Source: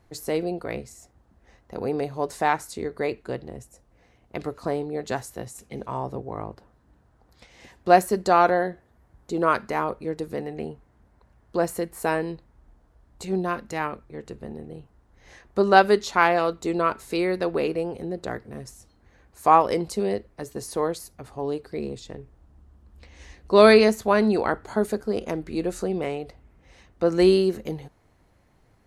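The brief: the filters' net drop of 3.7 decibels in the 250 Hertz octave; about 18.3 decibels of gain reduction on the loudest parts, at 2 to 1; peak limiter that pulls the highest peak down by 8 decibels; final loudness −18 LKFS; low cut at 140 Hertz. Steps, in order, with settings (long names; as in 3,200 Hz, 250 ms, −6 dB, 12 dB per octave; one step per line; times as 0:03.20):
high-pass filter 140 Hz
parametric band 250 Hz −5 dB
downward compressor 2 to 1, threshold −45 dBFS
level +24.5 dB
brickwall limiter −4 dBFS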